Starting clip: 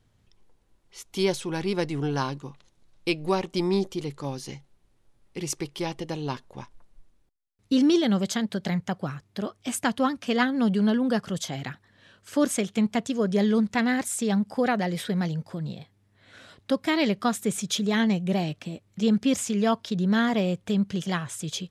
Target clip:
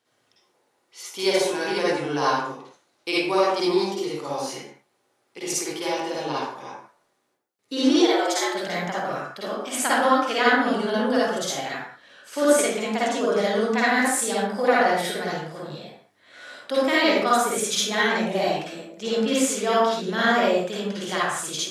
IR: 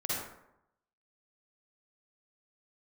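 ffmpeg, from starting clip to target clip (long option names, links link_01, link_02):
-filter_complex "[0:a]highpass=460,asplit=3[link_01][link_02][link_03];[link_01]afade=type=out:start_time=7.98:duration=0.02[link_04];[link_02]afreqshift=140,afade=type=in:start_time=7.98:duration=0.02,afade=type=out:start_time=8.54:duration=0.02[link_05];[link_03]afade=type=in:start_time=8.54:duration=0.02[link_06];[link_04][link_05][link_06]amix=inputs=3:normalize=0[link_07];[1:a]atrim=start_sample=2205,afade=type=out:start_time=0.32:duration=0.01,atrim=end_sample=14553[link_08];[link_07][link_08]afir=irnorm=-1:irlink=0,volume=2.5dB"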